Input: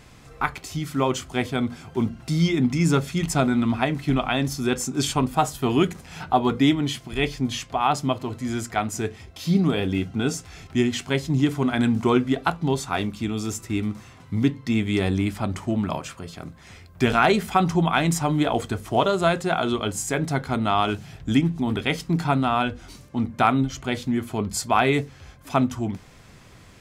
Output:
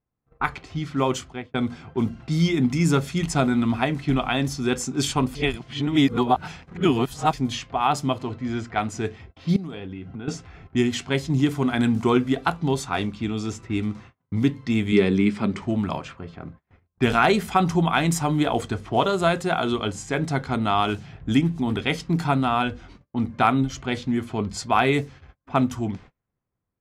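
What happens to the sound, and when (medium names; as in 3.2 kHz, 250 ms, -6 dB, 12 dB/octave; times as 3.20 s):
1.13–1.54 s: fade out
5.35–7.33 s: reverse
8.35–8.75 s: distance through air 74 m
9.56–10.28 s: compression, threshold -31 dBFS
14.92–15.62 s: cabinet simulation 140–7700 Hz, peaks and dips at 210 Hz +9 dB, 420 Hz +9 dB, 740 Hz -7 dB, 2.2 kHz +5 dB, 6.6 kHz -6 dB
whole clip: gate -42 dBFS, range -34 dB; level-controlled noise filter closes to 1.2 kHz, open at -19 dBFS; band-stop 610 Hz, Q 19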